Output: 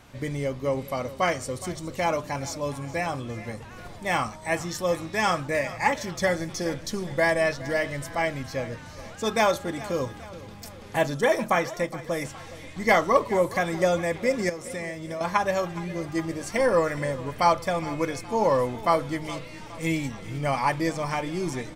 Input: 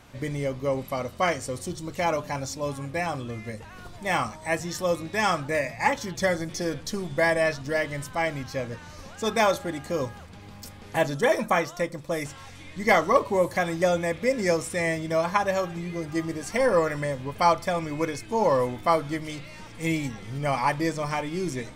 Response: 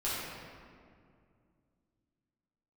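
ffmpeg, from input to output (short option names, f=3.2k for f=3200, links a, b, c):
-filter_complex "[0:a]asettb=1/sr,asplit=3[a][b][c];[a]atrim=end=14.494[d];[b]atrim=start=14.49:end=15.21,asetpts=PTS-STARTPTS,afade=t=in:d=0.004:c=qsin,afade=t=out:st=0.716:d=0.004:c=qsin,acompressor=threshold=-31dB:ratio=10[e];[c]atrim=start=15.206[f];[d][e]acrossfade=d=0.004:c1=hsin:c2=qsin[g];[g][f]acrossfade=d=0.004:c1=qsin:c2=hsin,aecho=1:1:416|832|1248|1664:0.141|0.0692|0.0339|0.0166"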